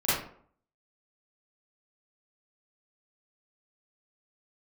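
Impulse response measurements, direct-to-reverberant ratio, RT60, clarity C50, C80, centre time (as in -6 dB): -13.0 dB, 0.55 s, -1.5 dB, 5.0 dB, 65 ms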